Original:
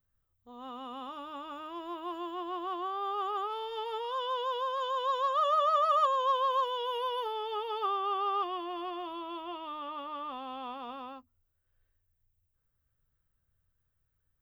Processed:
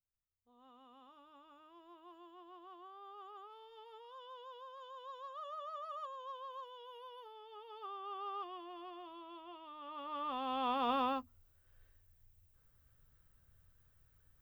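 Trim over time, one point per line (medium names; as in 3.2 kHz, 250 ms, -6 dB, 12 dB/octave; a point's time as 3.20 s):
7.47 s -19 dB
8.26 s -12 dB
9.74 s -12 dB
10.18 s -2 dB
10.95 s +9 dB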